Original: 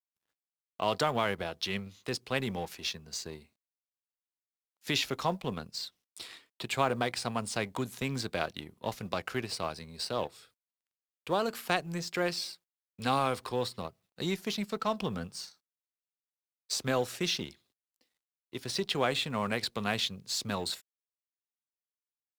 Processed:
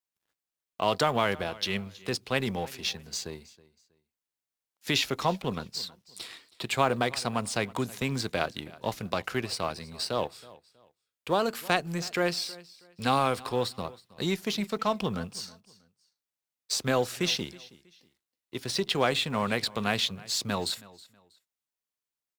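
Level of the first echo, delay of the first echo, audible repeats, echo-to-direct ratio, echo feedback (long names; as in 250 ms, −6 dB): −21.0 dB, 321 ms, 2, −20.5 dB, 28%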